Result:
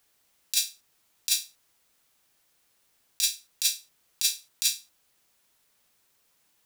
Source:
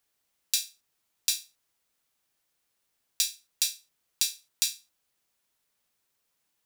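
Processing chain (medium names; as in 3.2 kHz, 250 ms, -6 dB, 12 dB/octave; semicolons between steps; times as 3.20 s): compressor with a negative ratio -28 dBFS, ratio -0.5; trim +5.5 dB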